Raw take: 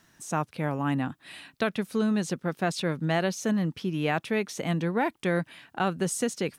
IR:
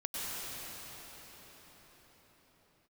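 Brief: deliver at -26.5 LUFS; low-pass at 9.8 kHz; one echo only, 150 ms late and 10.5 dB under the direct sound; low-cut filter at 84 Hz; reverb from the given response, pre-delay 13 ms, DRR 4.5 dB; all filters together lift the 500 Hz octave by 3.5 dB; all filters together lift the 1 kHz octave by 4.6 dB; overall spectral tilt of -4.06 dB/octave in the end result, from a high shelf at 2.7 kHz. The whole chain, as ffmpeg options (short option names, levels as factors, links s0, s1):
-filter_complex "[0:a]highpass=84,lowpass=9800,equalizer=f=500:t=o:g=3,equalizer=f=1000:t=o:g=6,highshelf=f=2700:g=-7,aecho=1:1:150:0.299,asplit=2[s0][s1];[1:a]atrim=start_sample=2205,adelay=13[s2];[s1][s2]afir=irnorm=-1:irlink=0,volume=0.335[s3];[s0][s3]amix=inputs=2:normalize=0,volume=0.891"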